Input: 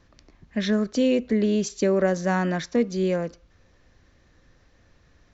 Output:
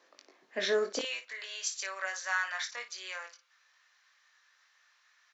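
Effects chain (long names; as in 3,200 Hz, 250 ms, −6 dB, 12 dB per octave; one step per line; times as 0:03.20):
high-pass filter 390 Hz 24 dB per octave, from 0:00.99 1,100 Hz
ambience of single reflections 21 ms −5.5 dB, 56 ms −11.5 dB
level −1.5 dB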